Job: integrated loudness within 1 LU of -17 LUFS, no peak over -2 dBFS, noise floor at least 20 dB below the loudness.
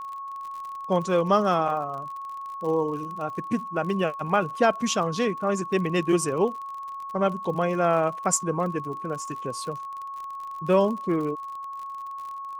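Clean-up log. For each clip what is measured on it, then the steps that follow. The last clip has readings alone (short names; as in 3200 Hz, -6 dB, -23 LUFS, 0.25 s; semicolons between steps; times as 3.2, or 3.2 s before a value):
ticks 43/s; steady tone 1100 Hz; tone level -33 dBFS; loudness -26.5 LUFS; peak -7.5 dBFS; loudness target -17.0 LUFS
-> de-click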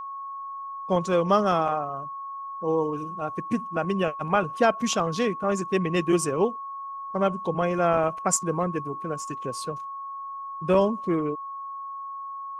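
ticks 0/s; steady tone 1100 Hz; tone level -33 dBFS
-> notch 1100 Hz, Q 30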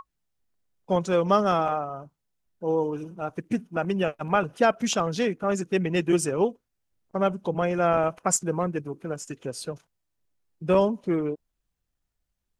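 steady tone none; loudness -26.0 LUFS; peak -8.0 dBFS; loudness target -17.0 LUFS
-> gain +9 dB; limiter -2 dBFS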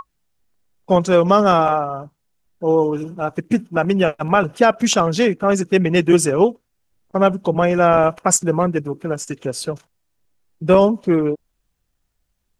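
loudness -17.5 LUFS; peak -2.0 dBFS; noise floor -72 dBFS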